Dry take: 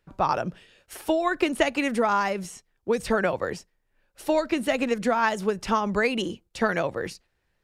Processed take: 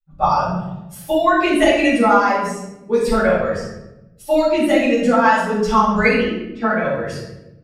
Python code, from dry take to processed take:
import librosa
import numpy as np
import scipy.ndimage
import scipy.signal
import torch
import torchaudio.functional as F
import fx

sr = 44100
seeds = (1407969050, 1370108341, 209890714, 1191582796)

y = fx.bin_expand(x, sr, power=1.5)
y = fx.bandpass_edges(y, sr, low_hz=210.0, high_hz=2100.0, at=(6.13, 6.83))
y = fx.room_shoebox(y, sr, seeds[0], volume_m3=350.0, walls='mixed', distance_m=6.8)
y = y * 10.0 ** (-4.5 / 20.0)